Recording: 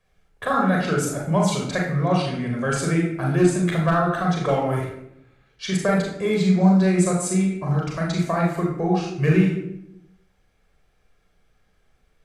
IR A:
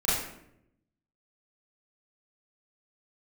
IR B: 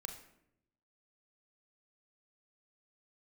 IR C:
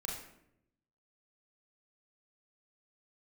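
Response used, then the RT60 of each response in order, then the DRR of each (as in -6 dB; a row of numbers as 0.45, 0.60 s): C; 0.75, 0.75, 0.75 s; -10.0, 5.0, -2.0 dB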